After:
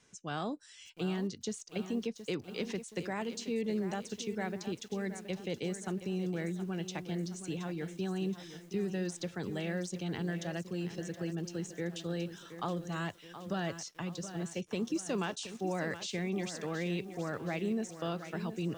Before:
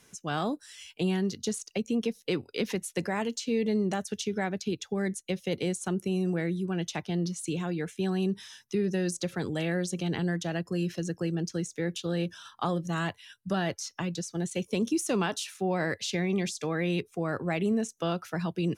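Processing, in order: steep low-pass 8.8 kHz 48 dB/octave; bit-crushed delay 722 ms, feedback 55%, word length 8-bit, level -11 dB; trim -6.5 dB

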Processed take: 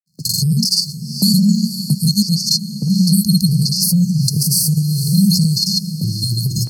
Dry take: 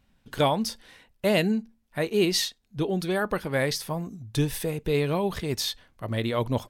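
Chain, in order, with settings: crackle 120 per s -56 dBFS; brick-wall FIR band-stop 190–4200 Hz; peaking EQ 3.8 kHz +14.5 dB 0.3 oct; hum notches 60/120/180 Hz; granulator 100 ms, pitch spread up and down by 0 st; compressor with a negative ratio -39 dBFS, ratio -1; dynamic bell 290 Hz, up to +4 dB, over -54 dBFS, Q 1; gate -48 dBFS, range -29 dB; high-pass 140 Hz 24 dB/octave; echo that smears into a reverb 501 ms, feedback 42%, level -15 dB; loudness maximiser +26 dB; three bands compressed up and down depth 40%; trim -1.5 dB

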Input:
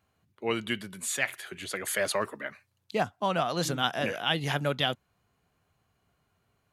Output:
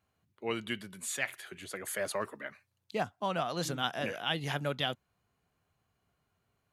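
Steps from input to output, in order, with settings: 1.49–2.20 s: dynamic bell 3.4 kHz, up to -5 dB, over -45 dBFS, Q 0.71; trim -5 dB

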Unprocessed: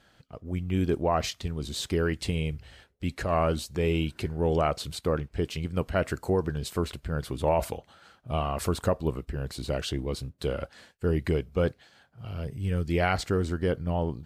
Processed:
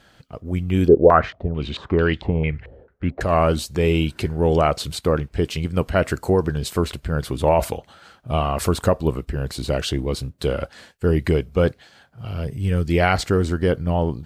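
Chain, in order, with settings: 0.88–3.21 s: step-sequenced low-pass 4.5 Hz 480–3500 Hz; trim +7.5 dB

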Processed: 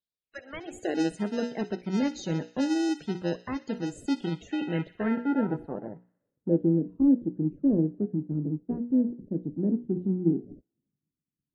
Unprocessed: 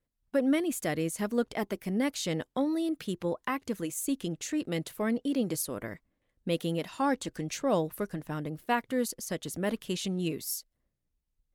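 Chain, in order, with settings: hum notches 60/120/180/240/300/360/420/480/540 Hz; dynamic bell 370 Hz, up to +8 dB, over -43 dBFS, Q 0.9; high-pass sweep 3.5 kHz -> 150 Hz, 0.16–1.19 s; in parallel at -4.5 dB: sample-and-hold 39×; on the sum: loudest bins only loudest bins 64; low-pass sweep 6 kHz -> 300 Hz, 3.92–6.83 s; feedback echo behind a high-pass 62 ms, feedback 65%, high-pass 2.1 kHz, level -15 dB; trim -8.5 dB

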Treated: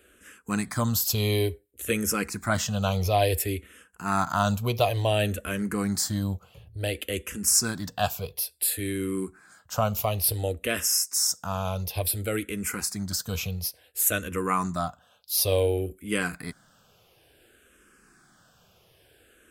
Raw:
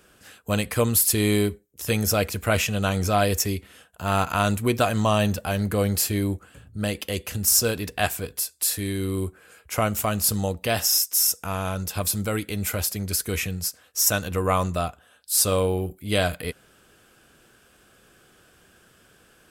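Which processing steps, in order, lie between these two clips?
barber-pole phaser -0.57 Hz

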